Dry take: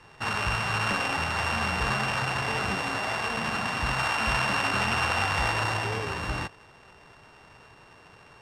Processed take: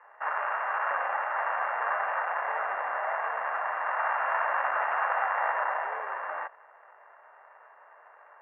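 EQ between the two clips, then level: Chebyshev band-pass 580–1900 Hz, order 3; distance through air 330 m; +3.5 dB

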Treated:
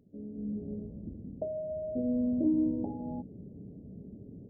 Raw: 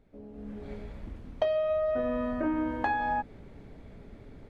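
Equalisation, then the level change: Gaussian low-pass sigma 21 samples; high-pass 120 Hz 12 dB/octave; peaking EQ 190 Hz +4 dB 0.31 oct; +6.5 dB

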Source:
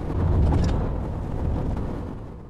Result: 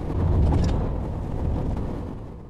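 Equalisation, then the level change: peaking EQ 1.4 kHz -4 dB 0.5 oct; 0.0 dB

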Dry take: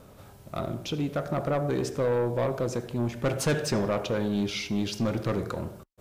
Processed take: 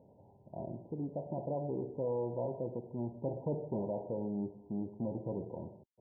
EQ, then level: high-pass 110 Hz; brick-wall FIR low-pass 1 kHz; -9.0 dB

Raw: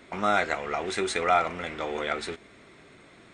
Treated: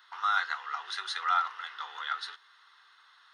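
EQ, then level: inverse Chebyshev high-pass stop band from 240 Hz, stop band 60 dB; static phaser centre 2.3 kHz, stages 6; 0.0 dB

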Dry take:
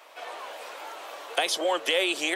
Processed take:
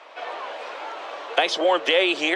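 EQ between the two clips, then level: distance through air 150 m; +7.0 dB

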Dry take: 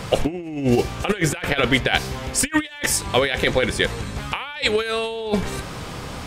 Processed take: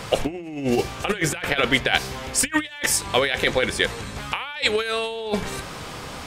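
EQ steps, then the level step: bass shelf 380 Hz -5.5 dB; hum notches 60/120/180 Hz; 0.0 dB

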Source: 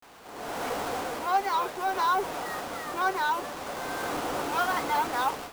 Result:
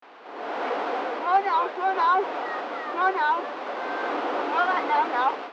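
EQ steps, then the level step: high-pass 280 Hz 24 dB/octave; low-pass 3.6 kHz 12 dB/octave; distance through air 130 m; +5.0 dB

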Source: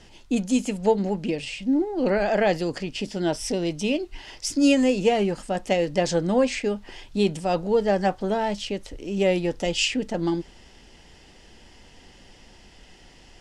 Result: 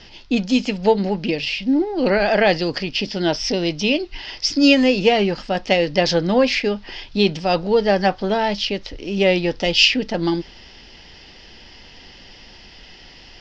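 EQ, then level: elliptic low-pass 5.2 kHz, stop band 60 dB; treble shelf 2.4 kHz +9.5 dB; +5.0 dB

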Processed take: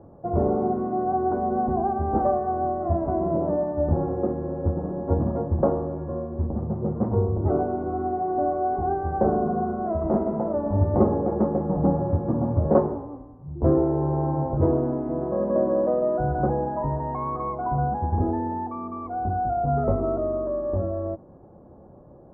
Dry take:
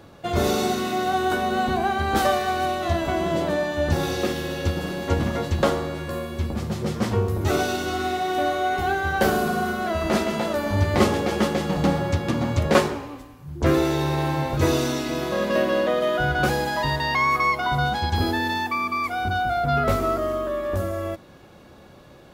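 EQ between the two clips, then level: inverse Chebyshev low-pass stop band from 3.9 kHz, stop band 70 dB; 0.0 dB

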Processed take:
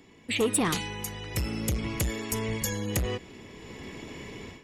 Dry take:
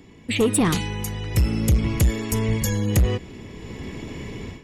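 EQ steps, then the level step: bass shelf 250 Hz -10 dB; -3.0 dB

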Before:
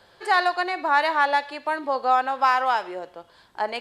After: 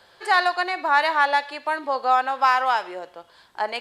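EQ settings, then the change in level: bass shelf 490 Hz -7 dB; +2.5 dB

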